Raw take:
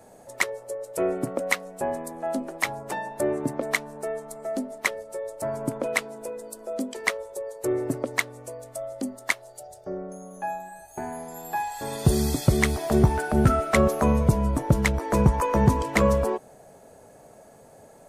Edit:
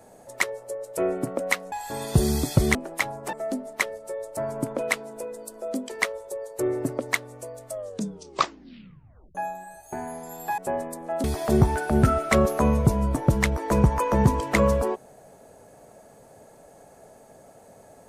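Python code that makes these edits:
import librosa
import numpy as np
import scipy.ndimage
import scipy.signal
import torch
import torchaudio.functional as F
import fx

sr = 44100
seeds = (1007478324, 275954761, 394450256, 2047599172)

y = fx.edit(x, sr, fx.swap(start_s=1.72, length_s=0.66, other_s=11.63, other_length_s=1.03),
    fx.cut(start_s=2.96, length_s=1.42),
    fx.tape_stop(start_s=8.74, length_s=1.66), tone=tone)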